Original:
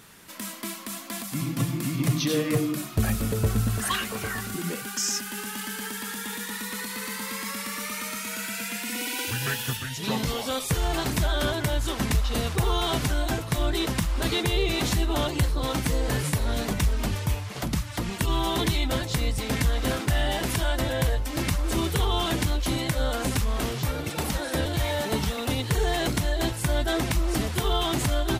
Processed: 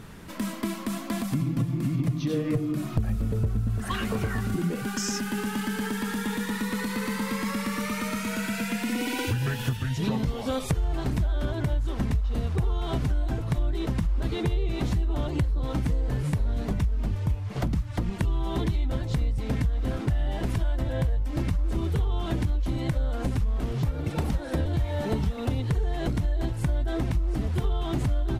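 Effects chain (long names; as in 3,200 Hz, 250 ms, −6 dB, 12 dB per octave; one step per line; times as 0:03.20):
spectral tilt −3 dB per octave
downward compressor, threshold −28 dBFS, peak gain reduction 20 dB
level +4 dB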